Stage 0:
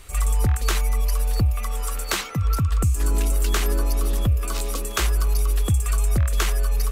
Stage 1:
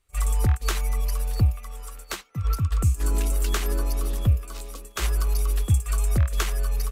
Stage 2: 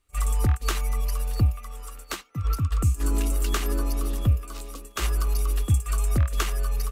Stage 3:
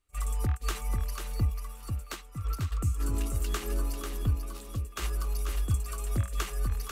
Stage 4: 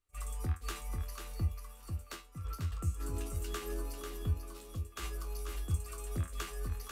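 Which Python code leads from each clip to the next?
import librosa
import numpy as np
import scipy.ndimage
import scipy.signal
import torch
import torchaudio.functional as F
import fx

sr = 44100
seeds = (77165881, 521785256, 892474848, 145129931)

y1 = fx.upward_expand(x, sr, threshold_db=-35.0, expansion=2.5)
y1 = F.gain(torch.from_numpy(y1), 2.0).numpy()
y2 = fx.small_body(y1, sr, hz=(280.0, 1200.0, 2800.0), ring_ms=45, db=7)
y2 = F.gain(torch.from_numpy(y2), -1.0).numpy()
y3 = y2 + 10.0 ** (-6.0 / 20.0) * np.pad(y2, (int(493 * sr / 1000.0), 0))[:len(y2)]
y3 = F.gain(torch.from_numpy(y3), -7.0).numpy()
y4 = fx.comb_fb(y3, sr, f0_hz=84.0, decay_s=0.24, harmonics='all', damping=0.0, mix_pct=80)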